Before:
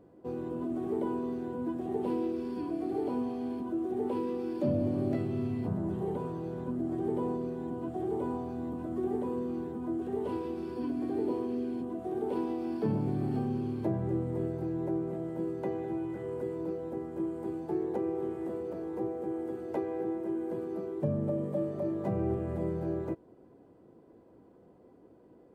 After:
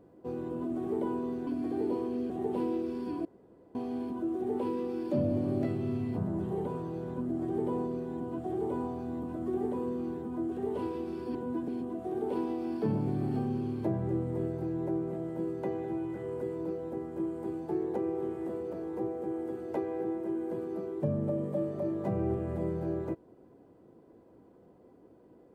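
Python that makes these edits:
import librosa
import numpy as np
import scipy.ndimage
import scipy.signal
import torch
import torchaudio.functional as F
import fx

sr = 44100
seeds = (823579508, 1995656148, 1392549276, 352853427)

y = fx.edit(x, sr, fx.swap(start_s=1.47, length_s=0.33, other_s=10.85, other_length_s=0.83),
    fx.room_tone_fill(start_s=2.75, length_s=0.5), tone=tone)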